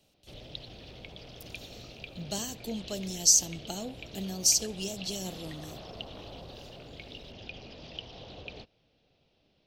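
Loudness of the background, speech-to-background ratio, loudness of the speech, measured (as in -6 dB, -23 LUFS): -45.5 LUFS, 17.5 dB, -28.0 LUFS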